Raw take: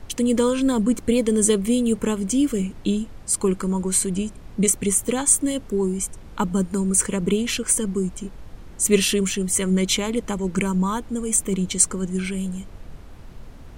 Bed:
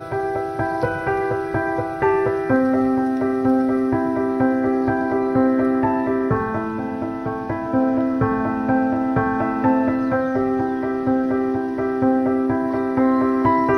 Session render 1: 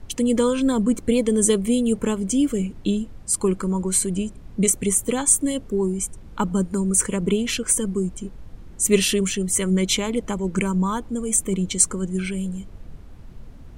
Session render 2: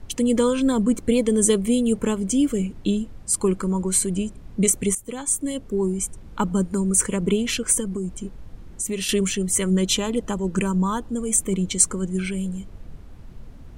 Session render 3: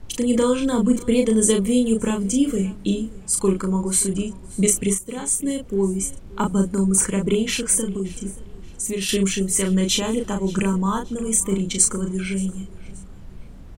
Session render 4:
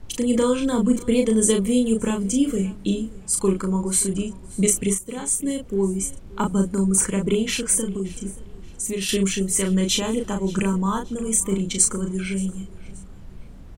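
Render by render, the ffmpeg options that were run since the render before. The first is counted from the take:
-af "afftdn=nr=6:nf=-42"
-filter_complex "[0:a]asettb=1/sr,asplit=3[a][b][c];[a]atrim=end=7.804[d];[b]atrim=start=7.8:end=9.09,asetpts=PTS-STARTPTS,afade=t=in:d=0.004:c=qsin,afade=t=out:st=1.286:d=0.004:c=qsin,acompressor=threshold=-23dB:ratio=6:attack=3.2:release=140:knee=1:detection=peak[e];[c]atrim=start=9.086[f];[d][e]acrossfade=d=0.004:c1=hsin:c2=qsin[g];[g][f]acrossfade=d=0.004:c1=qsin:c2=hsin,asettb=1/sr,asplit=3[h][i][j];[h]atrim=end=9.694[k];[i]atrim=start=9.69:end=11.17,asetpts=PTS-STARTPTS,afade=t=in:d=0.004:c=qsin,afade=t=out:st=1.476:d=0.004:c=qsin,asuperstop=centerf=2200:order=4:qfactor=7.3[l];[j]atrim=start=11.166[m];[k][l]acrossfade=d=0.004:c1=hsin:c2=qsin[n];[n][m]acrossfade=d=0.004:c1=qsin:c2=hsin,asplit=2[o][p];[o]atrim=end=4.95,asetpts=PTS-STARTPTS,afade=t=out:st=4.946:d=0.004:c=hsin:silence=0.199526[q];[p]atrim=start=4.95,asetpts=PTS-STARTPTS,afade=t=in:d=0.94:silence=0.199526[r];[q][r]concat=n=2:v=0:a=1"
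-filter_complex "[0:a]asplit=2[a][b];[b]adelay=36,volume=-4.5dB[c];[a][c]amix=inputs=2:normalize=0,aecho=1:1:576|1152:0.0891|0.0294"
-af "volume=-1dB"

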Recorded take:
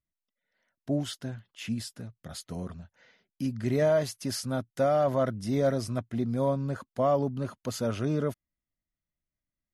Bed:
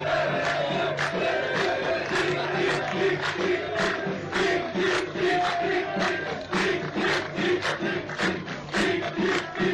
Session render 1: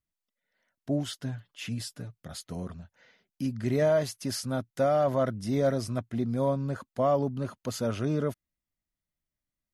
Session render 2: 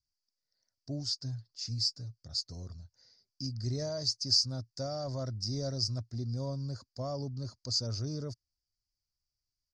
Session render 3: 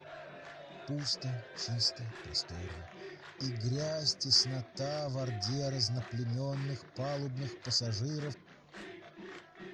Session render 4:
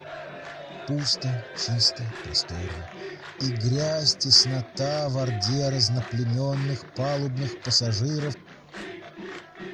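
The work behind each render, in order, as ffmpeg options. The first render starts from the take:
-filter_complex "[0:a]asettb=1/sr,asplit=3[a][b][c];[a]atrim=end=1.224[d];[b]atrim=start=1.22:end=2.15,asetpts=PTS-STARTPTS,afade=t=in:d=0.004:c=qsin,afade=t=out:st=0.926:d=0.004:c=qsin,aecho=1:1:6.8:0.59,atrim=end_sample=41013[e];[c]atrim=start=2.146[f];[d][e]acrossfade=d=0.004:c1=hsin:c2=qsin[g];[g][f]acrossfade=d=0.004:c1=qsin:c2=hsin"
-af "firequalizer=gain_entry='entry(120,0);entry(180,-15);entry(270,-11);entry(630,-14);entry(3100,-23);entry(4700,15);entry(11000,-29)':delay=0.05:min_phase=1"
-filter_complex "[1:a]volume=-23.5dB[a];[0:a][a]amix=inputs=2:normalize=0"
-af "volume=10dB"

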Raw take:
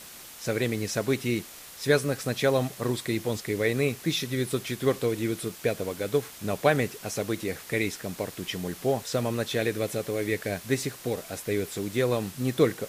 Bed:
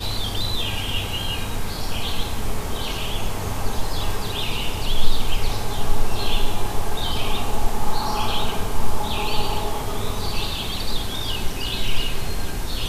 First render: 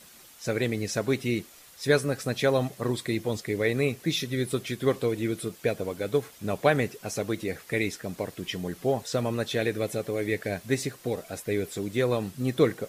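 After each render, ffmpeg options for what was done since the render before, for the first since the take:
-af "afftdn=nr=8:nf=-45"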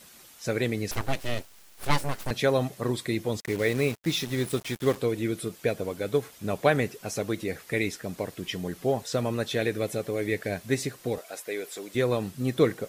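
-filter_complex "[0:a]asettb=1/sr,asplit=3[a][b][c];[a]atrim=end=0.914[d];[b]atrim=start=0.91:end=2.31,asetpts=PTS-STARTPTS,afade=t=in:d=0.004:c=qsin,afade=t=out:st=1.396:d=0.004:c=qsin,aeval=exprs='abs(val(0))':c=same[e];[c]atrim=start=2.306[f];[d][e]acrossfade=d=0.004:c1=hsin:c2=qsin[g];[g][f]acrossfade=d=0.004:c1=qsin:c2=hsin,asettb=1/sr,asplit=3[h][i][j];[h]atrim=end=3.404[k];[i]atrim=start=3.4:end=4.97,asetpts=PTS-STARTPTS,afade=t=in:d=0.004:c=qsin,afade=t=out:st=1.566:d=0.004:c=qsin,acrusher=bits=5:mix=0:aa=0.5[l];[j]atrim=start=4.966[m];[k][l]acrossfade=d=0.004:c1=hsin:c2=qsin[n];[n][m]acrossfade=d=0.004:c1=qsin:c2=hsin,asettb=1/sr,asplit=3[o][p][q];[o]atrim=end=11.184[r];[p]atrim=start=11.18:end=11.95,asetpts=PTS-STARTPTS,afade=t=in:d=0.004:c=qsin,afade=t=out:st=0.766:d=0.004:c=qsin,highpass=480[s];[q]atrim=start=11.946[t];[r][s]acrossfade=d=0.004:c1=hsin:c2=qsin[u];[u][t]acrossfade=d=0.004:c1=qsin:c2=hsin"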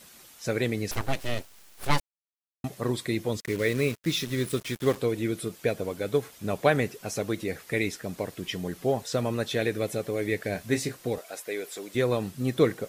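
-filter_complex "[0:a]asettb=1/sr,asplit=3[a][b][c];[a]atrim=end=3.334[d];[b]atrim=start=3.33:end=4.76,asetpts=PTS-STARTPTS,afade=t=in:d=0.004:c=qsin,afade=t=out:st=1.426:d=0.004:c=qsin,equalizer=f=790:w=4.1:g=-11.5[e];[c]atrim=start=4.756[f];[d][e]acrossfade=d=0.004:c1=hsin:c2=qsin[g];[g][f]acrossfade=d=0.004:c1=qsin:c2=hsin,asettb=1/sr,asplit=3[h][i][j];[h]atrim=end=10.524[k];[i]atrim=start=10.52:end=10.97,asetpts=PTS-STARTPTS,afade=t=in:d=0.004:c=qsin,afade=t=out:st=0.446:d=0.004:c=qsin,asplit=2[l][m];[m]adelay=26,volume=-8.5dB[n];[l][n]amix=inputs=2:normalize=0,atrim=end_sample=19845[o];[j]atrim=start=10.966[p];[k][o]acrossfade=d=0.004:c1=hsin:c2=qsin[q];[q][p]acrossfade=d=0.004:c1=qsin:c2=hsin,asplit=3[r][s][t];[r]atrim=end=2,asetpts=PTS-STARTPTS,afade=t=out:st=1.996:d=0.004:c=hsin[u];[s]atrim=start=2:end=2.64,asetpts=PTS-STARTPTS,volume=0[v];[t]atrim=start=2.64,asetpts=PTS-STARTPTS,afade=t=in:d=0.004:c=hsin[w];[u][v][w]concat=n=3:v=0:a=1"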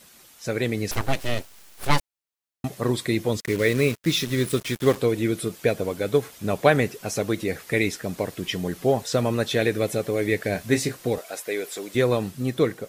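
-af "dynaudnorm=f=160:g=9:m=5dB"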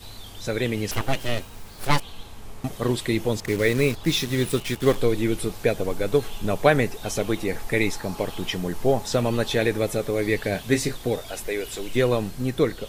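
-filter_complex "[1:a]volume=-15.5dB[a];[0:a][a]amix=inputs=2:normalize=0"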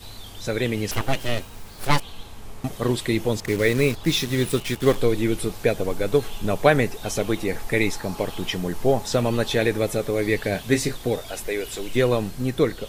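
-af "volume=1dB"

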